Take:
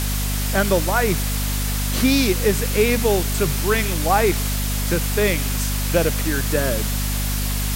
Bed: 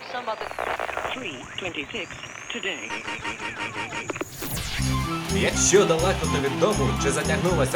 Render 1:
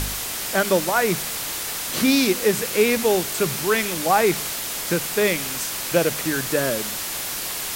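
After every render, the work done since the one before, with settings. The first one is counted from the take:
hum removal 50 Hz, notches 5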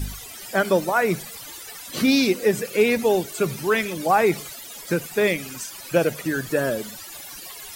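broadband denoise 17 dB, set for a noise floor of −29 dBFS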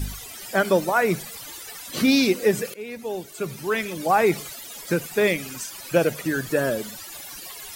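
0:02.74–0:04.31: fade in, from −21.5 dB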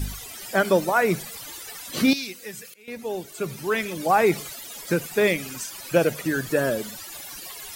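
0:02.13–0:02.88: guitar amp tone stack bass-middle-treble 5-5-5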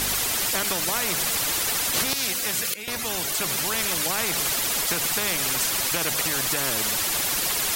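downward compressor 2 to 1, threshold −24 dBFS, peak gain reduction 6 dB
every bin compressed towards the loudest bin 4 to 1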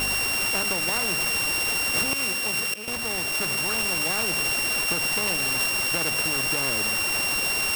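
samples sorted by size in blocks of 16 samples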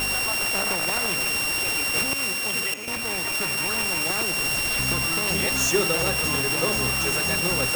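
mix in bed −6.5 dB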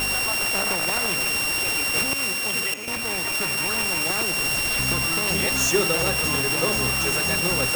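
level +1 dB

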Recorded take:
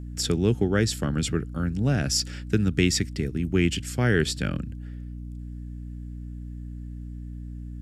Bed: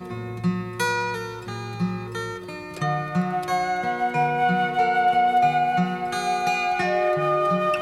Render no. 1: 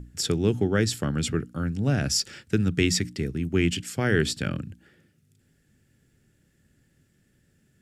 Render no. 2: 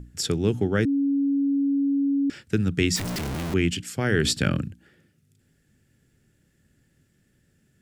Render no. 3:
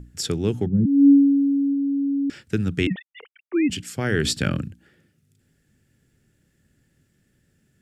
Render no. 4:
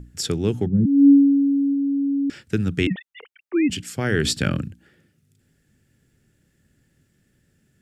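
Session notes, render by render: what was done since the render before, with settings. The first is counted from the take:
mains-hum notches 60/120/180/240/300 Hz
0:00.85–0:02.30: beep over 279 Hz −19.5 dBFS; 0:02.96–0:03.54: sign of each sample alone; 0:04.24–0:04.68: clip gain +5.5 dB
0:00.65–0:01.73: low-pass with resonance 150 Hz → 730 Hz, resonance Q 4; 0:02.87–0:03.70: three sine waves on the formant tracks
level +1 dB

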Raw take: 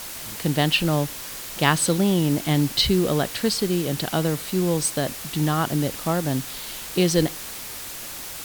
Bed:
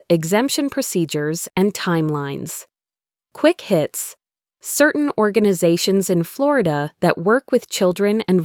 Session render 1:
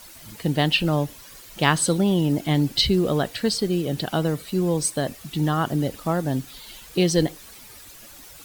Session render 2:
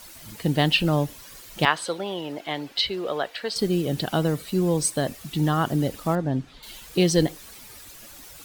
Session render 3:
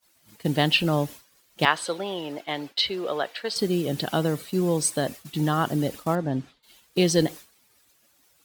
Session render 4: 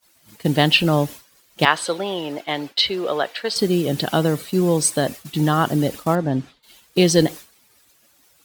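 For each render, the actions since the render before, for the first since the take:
broadband denoise 12 dB, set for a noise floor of −35 dBFS
0:01.65–0:03.56: three-way crossover with the lows and the highs turned down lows −21 dB, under 430 Hz, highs −14 dB, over 4,300 Hz; 0:06.15–0:06.63: head-to-tape spacing loss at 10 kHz 21 dB
downward expander −32 dBFS; high-pass filter 140 Hz 6 dB per octave
level +5.5 dB; brickwall limiter −1 dBFS, peak gain reduction 2 dB

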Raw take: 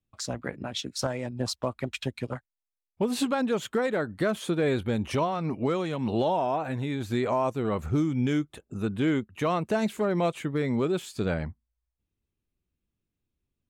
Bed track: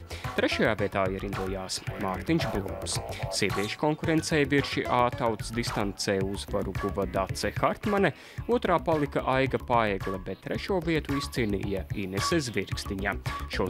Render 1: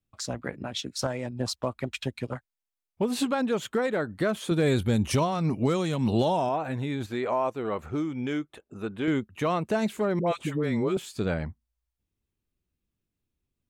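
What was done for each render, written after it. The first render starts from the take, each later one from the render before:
0:04.51–0:06.49: bass and treble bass +6 dB, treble +11 dB
0:07.06–0:09.08: bass and treble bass −10 dB, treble −7 dB
0:10.19–0:10.97: all-pass dispersion highs, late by 78 ms, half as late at 680 Hz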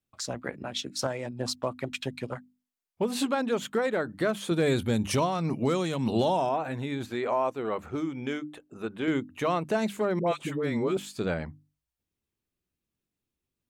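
low-shelf EQ 84 Hz −11 dB
mains-hum notches 50/100/150/200/250/300 Hz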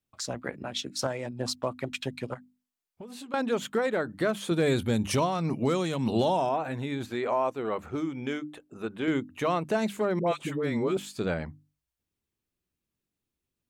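0:02.34–0:03.34: downward compressor, threshold −41 dBFS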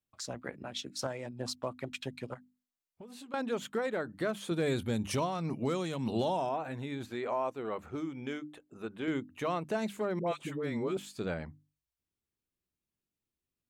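level −6 dB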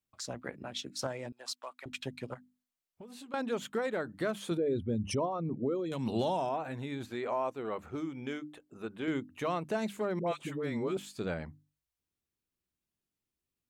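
0:01.32–0:01.86: high-pass filter 1,000 Hz
0:04.57–0:05.92: spectral envelope exaggerated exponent 2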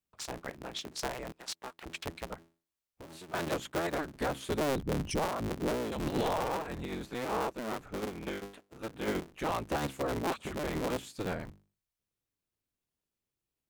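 sub-harmonics by changed cycles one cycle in 3, inverted

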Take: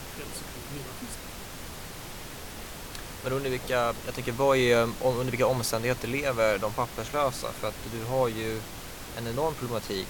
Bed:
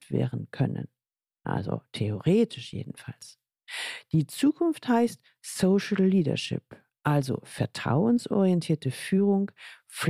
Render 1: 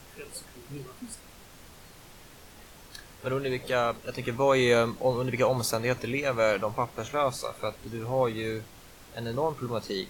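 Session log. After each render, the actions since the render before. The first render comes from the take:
noise reduction from a noise print 10 dB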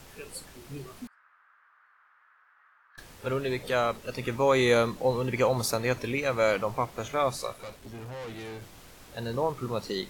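0:01.07–0:02.98: flat-topped band-pass 1,400 Hz, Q 2.4
0:07.53–0:08.62: tube saturation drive 37 dB, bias 0.6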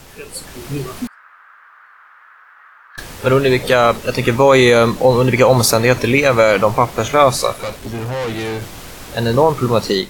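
automatic gain control gain up to 8 dB
boost into a limiter +9 dB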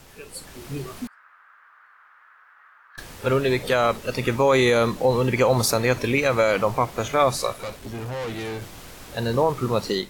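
level −8 dB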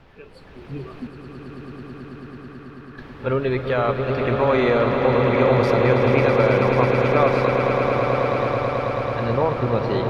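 high-frequency loss of the air 340 metres
echo that builds up and dies away 109 ms, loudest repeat 8, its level −8.5 dB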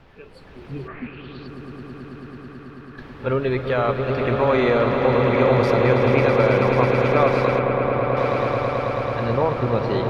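0:00.87–0:01.46: low-pass with resonance 1,700 Hz → 4,600 Hz
0:07.59–0:08.17: high-frequency loss of the air 300 metres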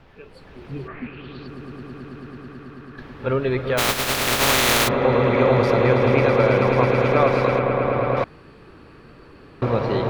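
0:03.77–0:04.87: compressing power law on the bin magnitudes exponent 0.23
0:08.24–0:09.62: fill with room tone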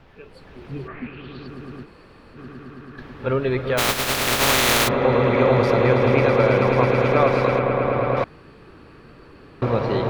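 0:01.85–0:02.36: fill with room tone, crossfade 0.06 s

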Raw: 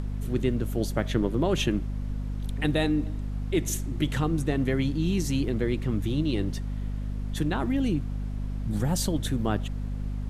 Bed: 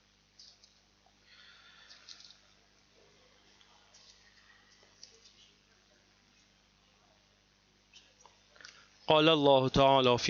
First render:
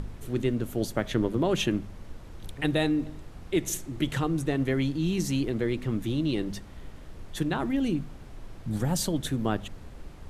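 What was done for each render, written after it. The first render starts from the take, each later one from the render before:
hum removal 50 Hz, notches 5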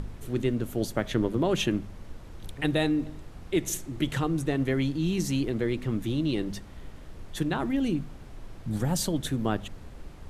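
no processing that can be heard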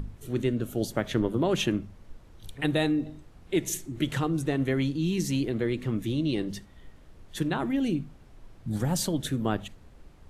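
noise reduction from a noise print 8 dB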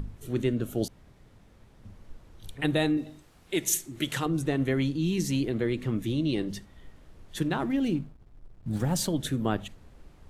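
0:00.88–0:01.85: fill with room tone
0:02.97–0:04.26: spectral tilt +2 dB per octave
0:07.49–0:09.08: slack as between gear wheels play −47.5 dBFS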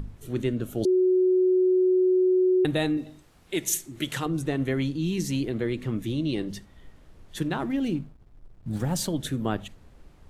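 0:00.85–0:02.65: beep over 369 Hz −17.5 dBFS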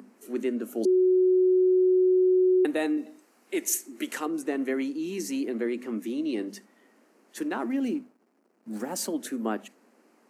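Chebyshev high-pass filter 220 Hz, order 5
parametric band 3,500 Hz −12.5 dB 0.43 octaves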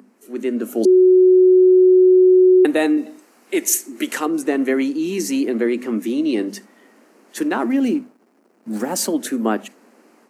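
automatic gain control gain up to 10 dB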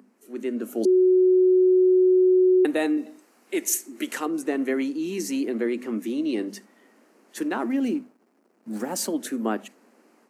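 level −6.5 dB

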